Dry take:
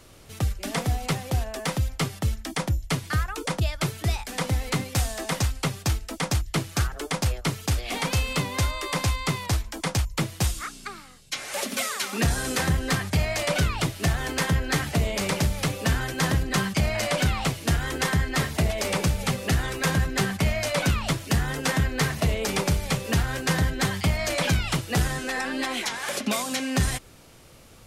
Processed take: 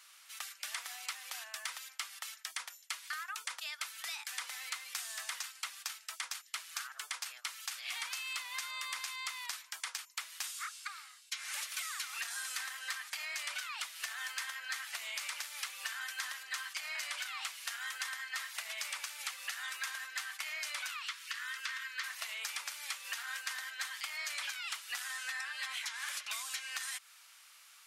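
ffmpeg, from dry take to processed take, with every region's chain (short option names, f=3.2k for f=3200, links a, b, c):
-filter_complex "[0:a]asettb=1/sr,asplit=3[a][b][c];[a]atrim=end=20.974[d];[b]atrim=start=20.97:end=22.04,asetpts=PTS-STARTPTS,afade=t=in:d=0.004:c=qsin,afade=t=out:st=1.066:d=0.004:c=qsin,asuperstop=centerf=690:order=4:qfactor=1.2,equalizer=f=290:t=o:w=0.4:g=-12,acrossover=split=5400[e][f];[f]acompressor=threshold=-47dB:ratio=4:attack=1:release=60[g];[e][g]amix=inputs=2:normalize=0[h];[c]atrim=start=22.036[i];[d][h]acrossfade=d=0.004:c1=hsin:c2=qsin[j];[j][i]acrossfade=d=0.004:c1=qsin:c2=hsin,highpass=f=1.2k:w=0.5412,highpass=f=1.2k:w=1.3066,acompressor=threshold=-34dB:ratio=6,volume=-3dB"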